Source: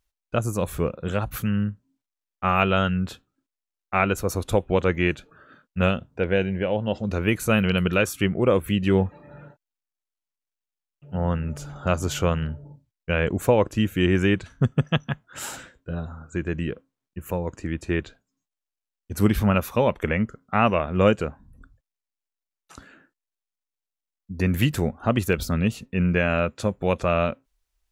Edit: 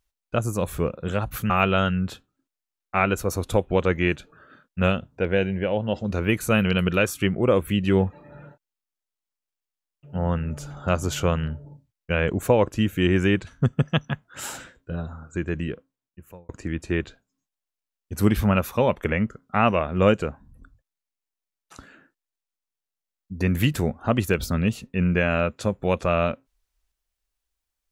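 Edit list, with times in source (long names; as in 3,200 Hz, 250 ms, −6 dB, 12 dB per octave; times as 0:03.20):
0:01.50–0:02.49: remove
0:16.54–0:17.48: fade out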